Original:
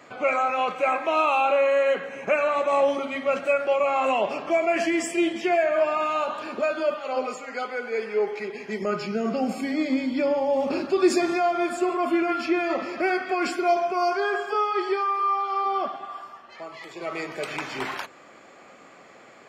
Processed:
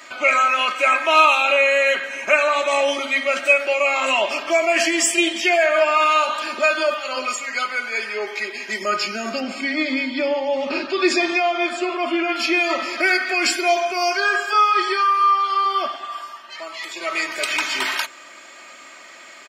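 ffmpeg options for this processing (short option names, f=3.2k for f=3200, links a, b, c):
-filter_complex "[0:a]asettb=1/sr,asplit=3[a][b][c];[a]atrim=end=9.404[d];[b]atrim=start=9.4:end=12.36,asetpts=PTS-STARTPTS,afade=t=in:d=0.004:c=qsin,afade=t=out:st=2.956:d=0.004:c=qsin,lowpass=3.8k[e];[c]atrim=start=12.356[f];[d][e]acrossfade=d=0.004:c1=hsin:c2=qsin[g];[g][f]acrossfade=d=0.004:c1=qsin:c2=hsin,tiltshelf=f=1.1k:g=-10,aecho=1:1:3.2:0.65,volume=4.5dB"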